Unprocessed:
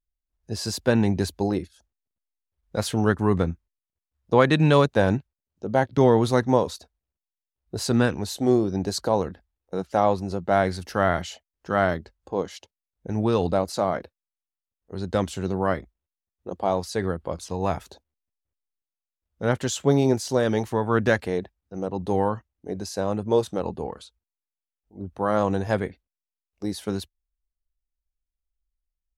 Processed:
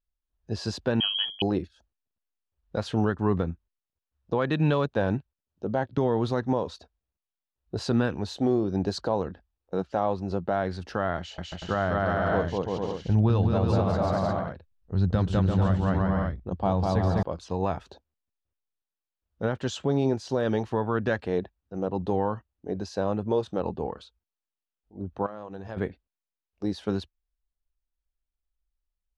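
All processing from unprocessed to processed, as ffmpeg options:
-filter_complex "[0:a]asettb=1/sr,asplit=3[s0][s1][s2];[s0]atrim=end=1.004[s3];[s1]atrim=start=1:end=1.42,asetpts=PTS-STARTPTS,afade=t=in:d=0.004:c=qsin,afade=t=out:st=0.416:d=0.004:c=qsin,bandreject=f=50:t=h:w=6,bandreject=f=100:t=h:w=6,bandreject=f=150:t=h:w=6,bandreject=f=200:t=h:w=6,bandreject=f=250:t=h:w=6,bandreject=f=300:t=h:w=6,lowpass=f=2900:t=q:w=0.5098,lowpass=f=2900:t=q:w=0.6013,lowpass=f=2900:t=q:w=0.9,lowpass=f=2900:t=q:w=2.563,afreqshift=-3400[s4];[s2]atrim=start=1.416[s5];[s3][s4]acrossfade=d=0.004:c1=hsin:c2=qsin[s6];[s6][s5]acrossfade=d=0.004:c1=qsin:c2=hsin,asettb=1/sr,asplit=3[s7][s8][s9];[s7]atrim=end=11.184[s10];[s8]atrim=start=11.18:end=17.23,asetpts=PTS-STARTPTS,afade=t=in:d=0.004:c=qsin,afade=t=out:st=6.046:d=0.004:c=qsin,asubboost=boost=6:cutoff=160,aecho=1:1:200|340|438|506.6|554.6:0.794|0.631|0.501|0.398|0.316,atrim=end_sample=266805[s11];[s9]atrim=start=17.226[s12];[s10][s11]acrossfade=d=0.004:c1=hsin:c2=qsin[s13];[s13][s12]acrossfade=d=0.004:c1=qsin:c2=hsin,asettb=1/sr,asplit=3[s14][s15][s16];[s14]atrim=end=25.264[s17];[s15]atrim=start=25.26:end=25.77,asetpts=PTS-STARTPTS,afade=t=in:d=0.004:c=qsin,afade=t=out:st=0.506:d=0.004:c=qsin,bandreject=f=50:t=h:w=6,bandreject=f=100:t=h:w=6,bandreject=f=150:t=h:w=6,bandreject=f=200:t=h:w=6,bandreject=f=250:t=h:w=6,bandreject=f=300:t=h:w=6,agate=range=0.447:threshold=0.0562:ratio=16:release=100:detection=peak,acompressor=threshold=0.0224:ratio=8:attack=3.2:release=140:knee=1:detection=peak[s18];[s16]atrim=start=25.766[s19];[s17][s18]acrossfade=d=0.004:c1=hsin:c2=qsin[s20];[s20][s19]acrossfade=d=0.004:c1=qsin:c2=hsin,alimiter=limit=0.2:level=0:latency=1:release=250,lowpass=3800,equalizer=f=2100:t=o:w=0.22:g=-7"

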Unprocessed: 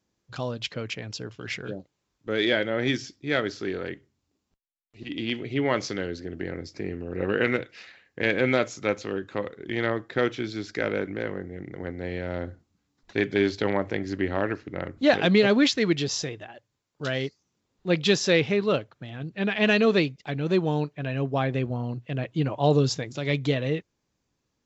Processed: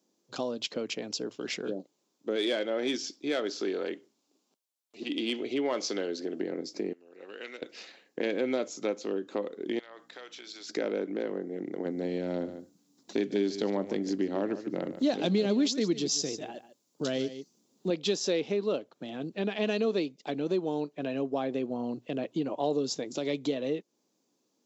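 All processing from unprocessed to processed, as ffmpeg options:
-filter_complex "[0:a]asettb=1/sr,asplit=3[s0][s1][s2];[s0]atrim=end=2.364[s3];[s1]atrim=start=2.36:end=6.39,asetpts=PTS-STARTPTS,afade=t=in:d=0.004:c=qsin,afade=t=out:st=4.026:d=0.004:c=qsin,asplit=2[s4][s5];[s5]highpass=f=720:p=1,volume=2.82,asoftclip=type=tanh:threshold=0.355[s6];[s4][s6]amix=inputs=2:normalize=0,lowpass=f=6700:p=1,volume=0.501,bandreject=f=1900:w=21[s7];[s2]atrim=start=6.386[s8];[s3][s7]acrossfade=d=0.004:c1=hsin:c2=qsin[s9];[s9][s8]acrossfade=d=0.004:c1=qsin:c2=hsin,asettb=1/sr,asplit=3[s10][s11][s12];[s10]atrim=end=6.934[s13];[s11]atrim=start=6.93:end=7.62,asetpts=PTS-STARTPTS,afade=t=in:d=0.004:c=qsin,afade=t=out:st=0.686:d=0.004:c=qsin,lowpass=f=3300:p=1,aderivative[s14];[s12]atrim=start=7.616[s15];[s13][s14]acrossfade=d=0.004:c1=hsin:c2=qsin[s16];[s16][s15]acrossfade=d=0.004:c1=qsin:c2=hsin,asettb=1/sr,asplit=3[s17][s18][s19];[s17]atrim=end=9.794[s20];[s18]atrim=start=9.79:end=10.69,asetpts=PTS-STARTPTS,afade=t=in:d=0.004:c=qsin,afade=t=out:st=0.896:d=0.004:c=qsin,highpass=1100,acompressor=threshold=0.00794:ratio=4:attack=3.2:release=140:knee=1:detection=peak,aeval=exprs='val(0)+0.000794*(sin(2*PI*60*n/s)+sin(2*PI*2*60*n/s)/2+sin(2*PI*3*60*n/s)/3+sin(2*PI*4*60*n/s)/4+sin(2*PI*5*60*n/s)/5)':c=same[s21];[s19]atrim=start=10.686[s22];[s20][s21]acrossfade=d=0.004:c1=hsin:c2=qsin[s23];[s23][s22]acrossfade=d=0.004:c1=qsin:c2=hsin,asettb=1/sr,asplit=3[s24][s25][s26];[s24]atrim=end=11.854[s27];[s25]atrim=start=11.85:end=17.9,asetpts=PTS-STARTPTS,afade=t=in:d=0.004:c=qsin,afade=t=out:st=6.046:d=0.004:c=qsin,bass=f=250:g=9,treble=f=4000:g=7,aecho=1:1:146:0.188,atrim=end_sample=266805[s28];[s26]atrim=start=17.896[s29];[s27][s28]acrossfade=d=0.004:c1=hsin:c2=qsin[s30];[s30][s29]acrossfade=d=0.004:c1=qsin:c2=hsin,highpass=f=230:w=0.5412,highpass=f=230:w=1.3066,equalizer=f=1800:w=0.8:g=-12.5,acompressor=threshold=0.0141:ratio=2.5,volume=2.11"

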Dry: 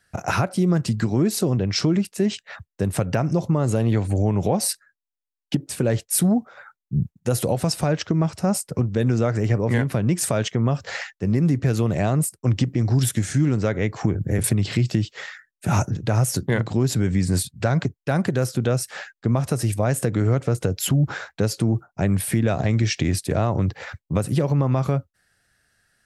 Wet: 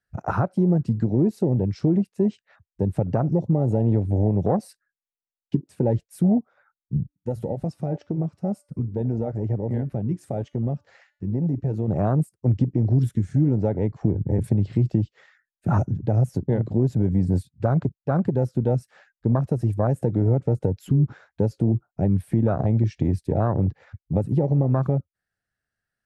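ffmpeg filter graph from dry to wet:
-filter_complex "[0:a]asettb=1/sr,asplit=3[s0][s1][s2];[s0]atrim=end=6.974[s3];[s1]atrim=start=6.97:end=11.88,asetpts=PTS-STARTPTS,afade=t=in:d=0.004:c=qsin,afade=t=out:st=4.906:d=0.004:c=qsin,bandreject=f=290.7:t=h:w=4,bandreject=f=581.4:t=h:w=4,bandreject=f=872.1:t=h:w=4,bandreject=f=1162.8:t=h:w=4,bandreject=f=1453.5:t=h:w=4,bandreject=f=1744.2:t=h:w=4,bandreject=f=2034.9:t=h:w=4,bandreject=f=2325.6:t=h:w=4,bandreject=f=2616.3:t=h:w=4,bandreject=f=2907:t=h:w=4,bandreject=f=3197.7:t=h:w=4,bandreject=f=3488.4:t=h:w=4,bandreject=f=3779.1:t=h:w=4,bandreject=f=4069.8:t=h:w=4,bandreject=f=4360.5:t=h:w=4,bandreject=f=4651.2:t=h:w=4,bandreject=f=4941.9:t=h:w=4,bandreject=f=5232.6:t=h:w=4,bandreject=f=5523.3:t=h:w=4,bandreject=f=5814:t=h:w=4,bandreject=f=6104.7:t=h:w=4,bandreject=f=6395.4:t=h:w=4,bandreject=f=6686.1:t=h:w=4,bandreject=f=6976.8:t=h:w=4,bandreject=f=7267.5:t=h:w=4,bandreject=f=7558.2:t=h:w=4,bandreject=f=7848.9:t=h:w=4,bandreject=f=8139.6:t=h:w=4,bandreject=f=8430.3:t=h:w=4,bandreject=f=8721:t=h:w=4,bandreject=f=9011.7:t=h:w=4,bandreject=f=9302.4:t=h:w=4,bandreject=f=9593.1:t=h:w=4,bandreject=f=9883.8:t=h:w=4,bandreject=f=10174.5:t=h:w=4,bandreject=f=10465.2:t=h:w=4,bandreject=f=10755.9:t=h:w=4,bandreject=f=11046.6:t=h:w=4,bandreject=f=11337.3:t=h:w=4,flanger=delay=0.9:depth=3.4:regen=-90:speed=1.1:shape=sinusoidal[s4];[s2]atrim=start=11.876[s5];[s3][s4]acrossfade=d=0.004:c1=hsin:c2=qsin[s6];[s6][s5]acrossfade=d=0.004:c1=qsin:c2=hsin,afwtdn=0.0708,highshelf=f=2900:g=-9.5"

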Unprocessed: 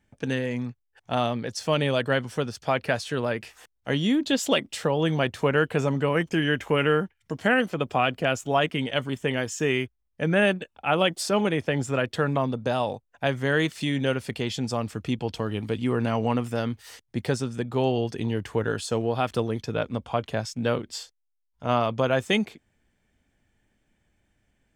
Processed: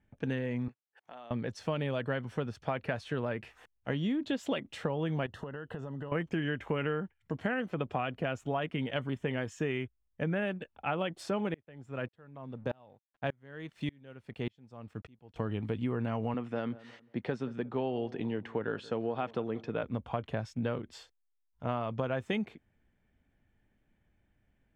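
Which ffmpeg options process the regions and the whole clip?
-filter_complex "[0:a]asettb=1/sr,asplit=3[s0][s1][s2];[s0]atrim=end=0.684[s3];[s1]atrim=start=0.68:end=1.31,asetpts=PTS-STARTPTS,afade=t=in:d=0.004:c=qsin,afade=t=out:st=0.626:d=0.004:c=qsin,highpass=f=140:w=0.5412,highpass=f=140:w=1.3066,bass=f=250:g=-14,treble=f=4000:g=2,acompressor=threshold=0.00708:ratio=4:attack=3.2:release=140:knee=1:detection=peak[s4];[s2]atrim=start=1.306[s5];[s3][s4]acrossfade=d=0.004:c1=hsin:c2=qsin[s6];[s6][s5]acrossfade=d=0.004:c1=qsin:c2=hsin,asettb=1/sr,asplit=3[s7][s8][s9];[s7]atrim=end=5.264[s10];[s8]atrim=start=5.26:end=6.12,asetpts=PTS-STARTPTS,afade=t=in:d=0.004:c=qsin,afade=t=out:st=0.856:d=0.004:c=qsin,acompressor=threshold=0.0251:ratio=20:attack=3.2:release=140:knee=1:detection=peak,asuperstop=centerf=2300:order=8:qfactor=4.1[s11];[s9]atrim=start=6.116[s12];[s10][s11]acrossfade=d=0.004:c1=hsin:c2=qsin[s13];[s13][s12]acrossfade=d=0.004:c1=qsin:c2=hsin,asettb=1/sr,asplit=3[s14][s15][s16];[s14]atrim=end=11.544[s17];[s15]atrim=start=11.54:end=15.36,asetpts=PTS-STARTPTS,afade=t=in:d=0.004:c=qsin,afade=t=out:st=3.816:d=0.004:c=qsin,aeval=exprs='sgn(val(0))*max(abs(val(0))-0.00266,0)':c=same,aeval=exprs='val(0)*pow(10,-33*if(lt(mod(-1.7*n/s,1),2*abs(-1.7)/1000),1-mod(-1.7*n/s,1)/(2*abs(-1.7)/1000),(mod(-1.7*n/s,1)-2*abs(-1.7)/1000)/(1-2*abs(-1.7)/1000))/20)':c=same[s18];[s16]atrim=start=15.356[s19];[s17][s18]acrossfade=d=0.004:c1=hsin:c2=qsin[s20];[s20][s19]acrossfade=d=0.004:c1=qsin:c2=hsin,asettb=1/sr,asplit=3[s21][s22][s23];[s21]atrim=end=16.344[s24];[s22]atrim=start=16.34:end=19.83,asetpts=PTS-STARTPTS,afade=t=in:d=0.004:c=qsin,afade=t=out:st=3.486:d=0.004:c=qsin,highpass=190,lowpass=4800,asplit=2[s25][s26];[s26]adelay=179,lowpass=f=1500:p=1,volume=0.1,asplit=2[s27][s28];[s28]adelay=179,lowpass=f=1500:p=1,volume=0.36,asplit=2[s29][s30];[s30]adelay=179,lowpass=f=1500:p=1,volume=0.36[s31];[s25][s27][s29][s31]amix=inputs=4:normalize=0,atrim=end_sample=153909[s32];[s23]atrim=start=19.826[s33];[s24][s32]acrossfade=d=0.004:c1=hsin:c2=qsin[s34];[s34][s33]acrossfade=d=0.004:c1=qsin:c2=hsin,bass=f=250:g=3,treble=f=4000:g=-15,bandreject=f=4800:w=18,acompressor=threshold=0.0631:ratio=6,volume=0.596"

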